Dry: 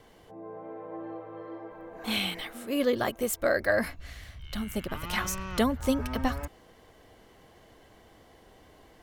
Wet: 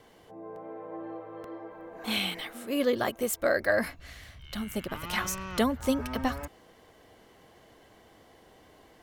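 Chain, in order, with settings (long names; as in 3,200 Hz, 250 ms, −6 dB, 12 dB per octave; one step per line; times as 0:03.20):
low-shelf EQ 69 Hz −9.5 dB
regular buffer underruns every 0.88 s, samples 64, repeat, from 0:00.56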